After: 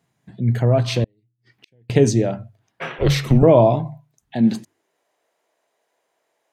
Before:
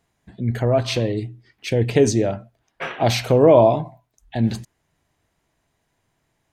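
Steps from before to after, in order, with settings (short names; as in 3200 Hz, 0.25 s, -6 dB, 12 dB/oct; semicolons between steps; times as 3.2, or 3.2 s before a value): high-pass sweep 130 Hz -> 510 Hz, 4.21–5.03; notches 50/100/150 Hz; 1.04–1.9 flipped gate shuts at -28 dBFS, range -40 dB; 2.98–3.43 frequency shift -260 Hz; gain -1 dB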